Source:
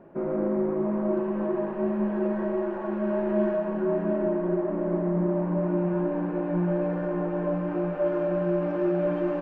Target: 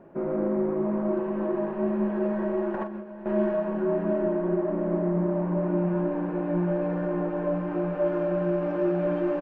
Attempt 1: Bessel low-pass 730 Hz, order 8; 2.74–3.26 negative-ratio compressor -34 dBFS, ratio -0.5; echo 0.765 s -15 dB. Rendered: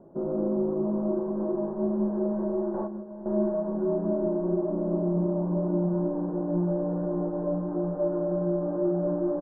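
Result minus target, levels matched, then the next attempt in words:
1000 Hz band -4.0 dB
2.74–3.26 negative-ratio compressor -34 dBFS, ratio -0.5; echo 0.765 s -15 dB

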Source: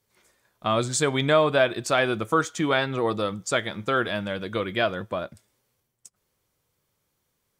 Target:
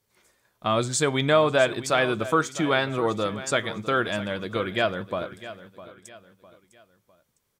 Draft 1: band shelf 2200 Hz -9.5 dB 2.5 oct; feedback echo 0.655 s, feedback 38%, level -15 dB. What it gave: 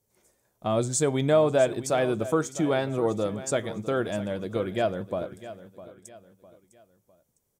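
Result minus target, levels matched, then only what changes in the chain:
2000 Hz band -7.5 dB
remove: band shelf 2200 Hz -9.5 dB 2.5 oct

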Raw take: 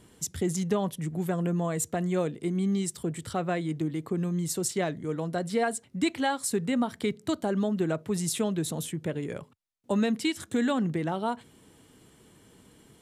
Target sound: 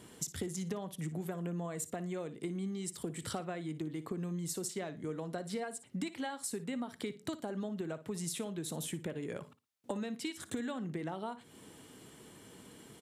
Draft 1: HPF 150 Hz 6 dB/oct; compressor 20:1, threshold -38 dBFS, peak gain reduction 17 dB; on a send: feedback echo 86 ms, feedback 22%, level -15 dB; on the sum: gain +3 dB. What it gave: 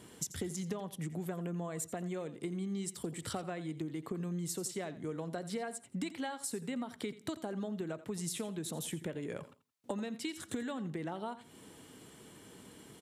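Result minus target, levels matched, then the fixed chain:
echo 28 ms late
HPF 150 Hz 6 dB/oct; compressor 20:1, threshold -38 dBFS, peak gain reduction 17 dB; on a send: feedback echo 58 ms, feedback 22%, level -15 dB; on the sum: gain +3 dB

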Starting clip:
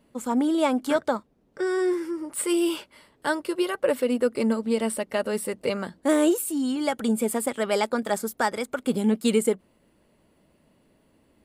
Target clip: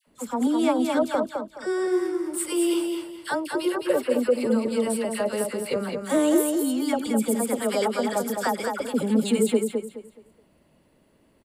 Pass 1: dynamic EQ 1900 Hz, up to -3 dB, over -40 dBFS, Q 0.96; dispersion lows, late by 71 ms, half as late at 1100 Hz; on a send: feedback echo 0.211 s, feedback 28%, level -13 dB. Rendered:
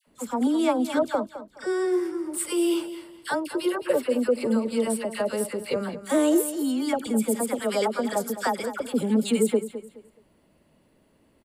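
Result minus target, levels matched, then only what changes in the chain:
echo-to-direct -8 dB
change: feedback echo 0.211 s, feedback 28%, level -5 dB

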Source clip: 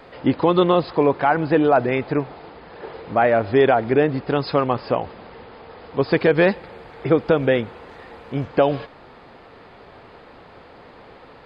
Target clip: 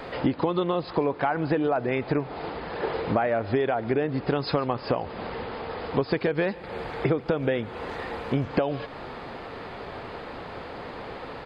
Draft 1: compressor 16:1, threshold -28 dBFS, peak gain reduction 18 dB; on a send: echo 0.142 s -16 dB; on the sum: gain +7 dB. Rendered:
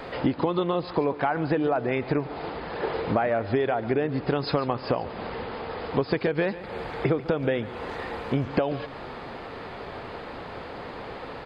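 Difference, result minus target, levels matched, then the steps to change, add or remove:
echo-to-direct +8 dB
change: echo 0.142 s -24 dB

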